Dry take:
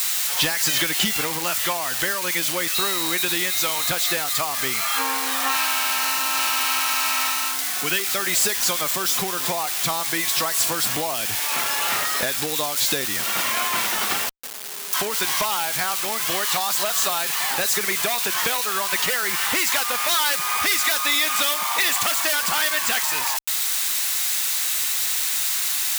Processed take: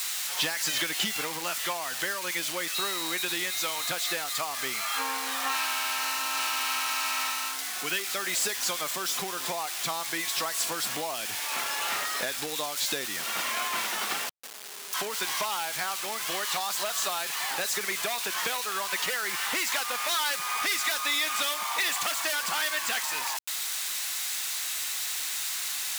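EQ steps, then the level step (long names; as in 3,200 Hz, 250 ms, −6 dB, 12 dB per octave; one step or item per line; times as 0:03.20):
high-pass filter 120 Hz 12 dB per octave
low-shelf EQ 210 Hz −6.5 dB
high-shelf EQ 12,000 Hz −7.5 dB
−6.0 dB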